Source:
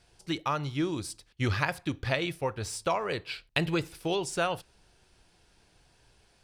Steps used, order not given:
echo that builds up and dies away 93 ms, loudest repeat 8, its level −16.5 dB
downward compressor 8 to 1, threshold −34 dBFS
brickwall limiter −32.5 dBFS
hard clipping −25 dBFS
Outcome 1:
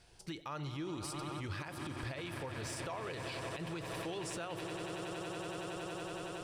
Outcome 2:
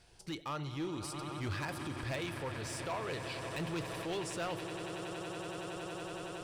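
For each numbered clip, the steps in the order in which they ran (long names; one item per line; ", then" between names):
echo that builds up and dies away, then downward compressor, then brickwall limiter, then hard clipping
echo that builds up and dies away, then hard clipping, then downward compressor, then brickwall limiter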